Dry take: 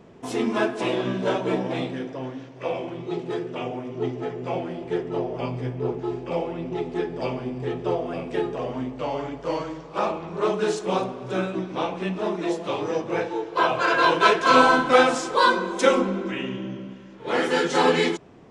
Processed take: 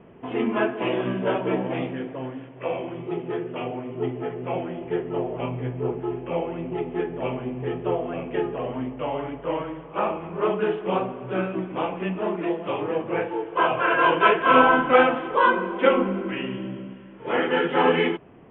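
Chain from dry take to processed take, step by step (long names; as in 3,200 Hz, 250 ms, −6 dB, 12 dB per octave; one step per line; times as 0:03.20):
Butterworth low-pass 3,200 Hz 96 dB per octave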